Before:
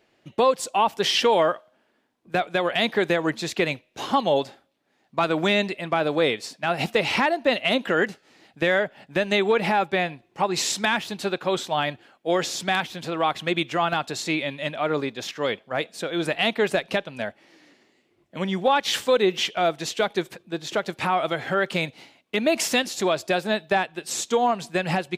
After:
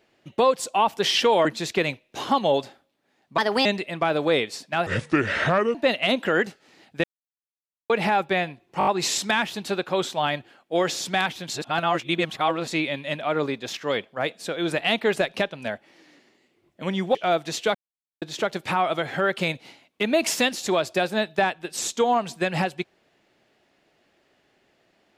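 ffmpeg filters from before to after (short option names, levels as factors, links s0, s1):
-filter_complex "[0:a]asplit=17[s0][s1][s2][s3][s4][s5][s6][s7][s8][s9][s10][s11][s12][s13][s14][s15][s16];[s0]atrim=end=1.452[s17];[s1]atrim=start=3.268:end=5.204[s18];[s2]atrim=start=5.2:end=5.56,asetpts=PTS-STARTPTS,asetrate=57771,aresample=44100,atrim=end_sample=12119,asetpts=PTS-STARTPTS[s19];[s3]atrim=start=5.556:end=6.774[s20];[s4]atrim=start=6.77:end=7.37,asetpts=PTS-STARTPTS,asetrate=29988,aresample=44100[s21];[s5]atrim=start=7.366:end=8.66,asetpts=PTS-STARTPTS,afade=t=out:st=1.29:d=0.004:c=hsin[s22];[s6]atrim=start=8.66:end=9.52,asetpts=PTS-STARTPTS,volume=0[s23];[s7]atrim=start=9.52:end=10.432,asetpts=PTS-STARTPTS,afade=t=in:d=0.004:c=hsin[s24];[s8]atrim=start=10.408:end=10.432[s25];[s9]atrim=start=10.408:end=10.432[s26];[s10]atrim=start=10.408:end=10.432[s27];[s11]atrim=start=10.408:end=13.042[s28];[s12]atrim=start=13.038:end=14.222,asetpts=PTS-STARTPTS,areverse[s29];[s13]atrim=start=14.218:end=18.692[s30];[s14]atrim=start=19.478:end=20.08,asetpts=PTS-STARTPTS,afade=t=out:st=0.598:d=0.004:c=hsin[s31];[s15]atrim=start=20.08:end=20.55,asetpts=PTS-STARTPTS,volume=0[s32];[s16]atrim=start=20.55,asetpts=PTS-STARTPTS,afade=t=in:d=0.004:c=hsin[s33];[s17][s18]acrossfade=d=0.004:c1=hsin:c2=hsin[s34];[s34][s19]acrossfade=d=0.004:c1=hsin:c2=hsin[s35];[s35][s20]acrossfade=d=0.004:c1=hsin:c2=hsin[s36];[s36][s21]acrossfade=d=0.004:c1=hsin:c2=hsin[s37];[s22][s23][s24]concat=n=3:v=0:a=1[s38];[s37][s38]acrossfade=d=0.004:c1=hsin:c2=hsin[s39];[s39][s25]acrossfade=d=0.004:c1=hsin:c2=hsin[s40];[s40][s26]acrossfade=d=0.004:c1=hsin:c2=hsin[s41];[s41][s27]acrossfade=d=0.004:c1=hsin:c2=hsin[s42];[s42][s28]acrossfade=d=0.004:c1=hsin:c2=hsin[s43];[s43][s29]acrossfade=d=0.004:c1=hsin:c2=hsin[s44];[s44][s30]acrossfade=d=0.004:c1=hsin:c2=hsin[s45];[s31][s32][s33]concat=n=3:v=0:a=1[s46];[s45][s46]acrossfade=d=0.004:c1=hsin:c2=hsin"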